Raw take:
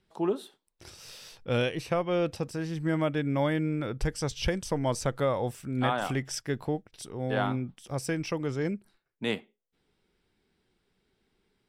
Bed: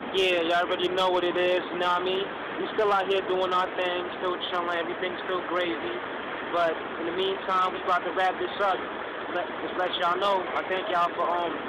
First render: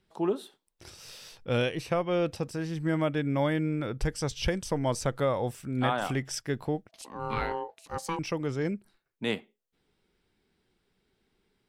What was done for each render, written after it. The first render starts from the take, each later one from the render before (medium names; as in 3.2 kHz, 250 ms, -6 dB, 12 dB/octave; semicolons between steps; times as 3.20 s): 6.89–8.19 s: ring modulator 660 Hz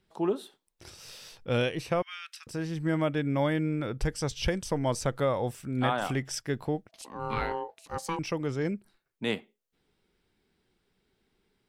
2.02–2.47 s: steep high-pass 1.4 kHz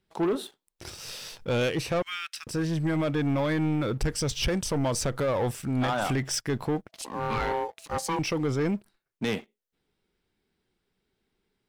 peak limiter -20 dBFS, peak gain reduction 6.5 dB; waveshaping leveller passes 2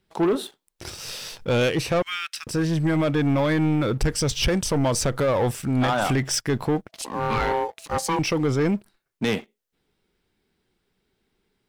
trim +5 dB